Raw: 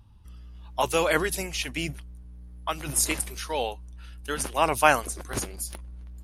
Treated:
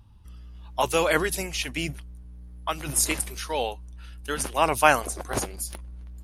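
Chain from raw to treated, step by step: 5.01–5.46 bell 720 Hz +8.5 dB 1.2 oct; gain +1 dB

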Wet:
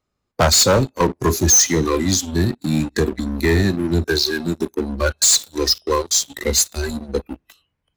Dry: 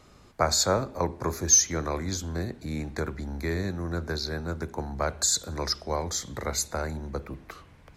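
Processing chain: spectral noise reduction 22 dB; sample leveller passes 3; soft clip -15 dBFS, distortion -14 dB; gain +5.5 dB

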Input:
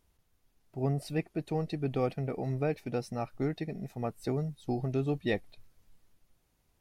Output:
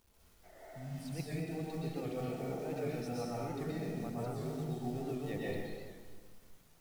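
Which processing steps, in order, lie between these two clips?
spectral repair 0.47–1, 270–2200 Hz after; reverse; compressor 16:1, threshold -39 dBFS, peak gain reduction 15.5 dB; reverse; companded quantiser 6-bit; plate-style reverb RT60 1.7 s, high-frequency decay 0.75×, pre-delay 0.105 s, DRR -7 dB; record warp 78 rpm, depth 100 cents; gain -2 dB

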